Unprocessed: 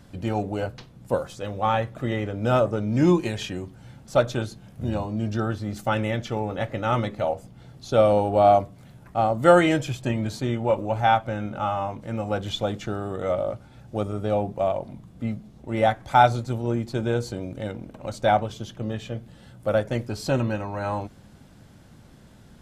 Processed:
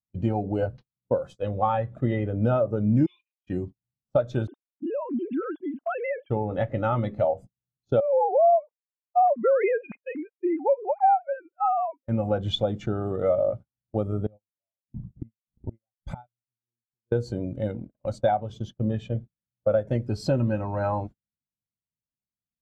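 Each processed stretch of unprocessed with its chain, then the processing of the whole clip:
3.06–3.47 expander -21 dBFS + Butterworth band-pass 2900 Hz, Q 1.9 + doubler 37 ms -11 dB
4.47–6.3 sine-wave speech + compressor 3:1, threshold -32 dBFS
8–12.08 sine-wave speech + compressor, threshold -21 dBFS + careless resampling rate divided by 8×, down none, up filtered
14.26–17.12 low shelf 200 Hz +10.5 dB + flipped gate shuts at -21 dBFS, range -29 dB
whole clip: gate -37 dBFS, range -30 dB; compressor 16:1, threshold -24 dBFS; spectral expander 1.5:1; gain +4 dB

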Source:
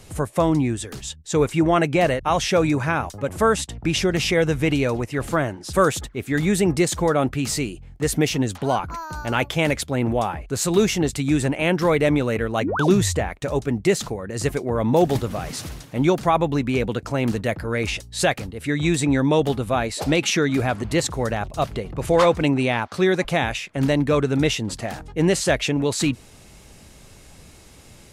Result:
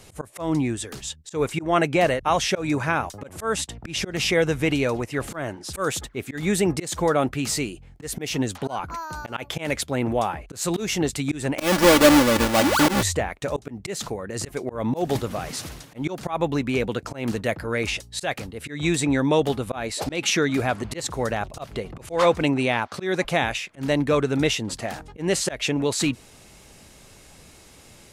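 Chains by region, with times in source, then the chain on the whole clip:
11.58–13.03 half-waves squared off + comb 3.5 ms, depth 64%
whole clip: low shelf 200 Hz -6 dB; auto swell 0.168 s

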